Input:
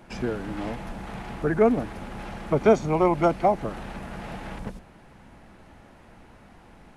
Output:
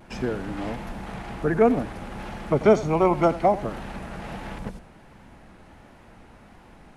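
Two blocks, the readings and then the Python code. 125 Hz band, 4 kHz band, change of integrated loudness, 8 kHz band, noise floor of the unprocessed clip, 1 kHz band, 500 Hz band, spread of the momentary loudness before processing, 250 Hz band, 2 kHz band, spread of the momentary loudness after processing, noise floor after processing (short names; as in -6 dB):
+1.0 dB, +1.0 dB, +1.0 dB, n/a, -52 dBFS, +1.0 dB, +1.0 dB, 17 LU, +1.0 dB, +1.0 dB, 17 LU, -51 dBFS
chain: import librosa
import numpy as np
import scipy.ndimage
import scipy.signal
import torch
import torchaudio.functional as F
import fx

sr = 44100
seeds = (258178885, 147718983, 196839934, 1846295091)

p1 = fx.vibrato(x, sr, rate_hz=1.4, depth_cents=46.0)
p2 = p1 + fx.echo_single(p1, sr, ms=88, db=-16.5, dry=0)
y = p2 * 10.0 ** (1.0 / 20.0)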